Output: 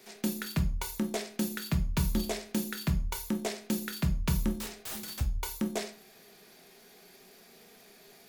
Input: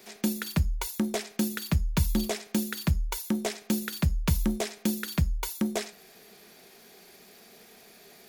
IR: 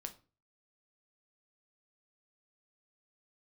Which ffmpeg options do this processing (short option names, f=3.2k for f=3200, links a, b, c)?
-filter_complex "[0:a]asettb=1/sr,asplit=3[a][b][c];[a]atrim=end=4.594[d];[b]atrim=start=4.59:end=5.21,asetpts=PTS-STARTPTS,afade=t=in:d=0.004:c=qsin,afade=t=out:st=0.616:d=0.004:c=qsin,aeval=exprs='(mod(31.6*val(0)+1,2)-1)/31.6':c=same[e];[c]atrim=start=5.206[f];[d][e]acrossfade=d=0.004:c1=hsin:c2=qsin[g];[g][f]acrossfade=d=0.004:c1=qsin:c2=hsin[h];[1:a]atrim=start_sample=2205,asetrate=39249,aresample=44100[i];[h][i]afir=irnorm=-1:irlink=0"